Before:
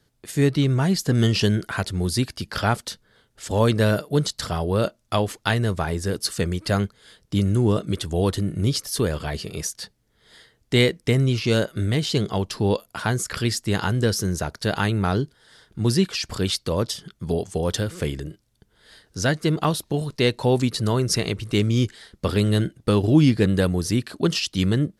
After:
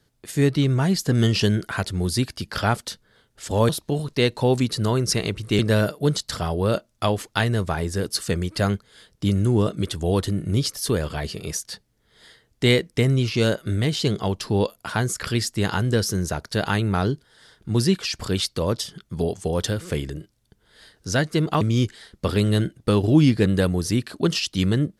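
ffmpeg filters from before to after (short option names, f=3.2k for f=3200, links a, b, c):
-filter_complex "[0:a]asplit=4[a][b][c][d];[a]atrim=end=3.692[e];[b]atrim=start=19.708:end=21.612[f];[c]atrim=start=3.688:end=19.712[g];[d]atrim=start=21.608[h];[e][f]acrossfade=d=0.004:c1=hsin:c2=hsin[i];[i][g]acrossfade=d=0.004:c1=hsin:c2=hsin[j];[j][h]acrossfade=d=0.004:c1=hsin:c2=hsin"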